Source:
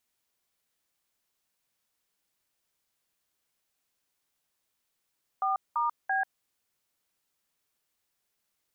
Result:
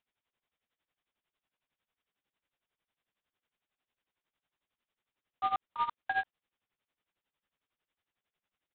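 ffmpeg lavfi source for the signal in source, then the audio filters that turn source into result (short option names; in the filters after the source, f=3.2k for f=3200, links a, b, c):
-f lavfi -i "aevalsrc='0.0422*clip(min(mod(t,0.337),0.14-mod(t,0.337))/0.002,0,1)*(eq(floor(t/0.337),0)*(sin(2*PI*770*mod(t,0.337))+sin(2*PI*1209*mod(t,0.337)))+eq(floor(t/0.337),1)*(sin(2*PI*941*mod(t,0.337))+sin(2*PI*1209*mod(t,0.337)))+eq(floor(t/0.337),2)*(sin(2*PI*770*mod(t,0.337))+sin(2*PI*1633*mod(t,0.337))))':d=1.011:s=44100"
-af "aresample=8000,acrusher=bits=3:mode=log:mix=0:aa=0.000001,aresample=44100,tremolo=f=11:d=0.86"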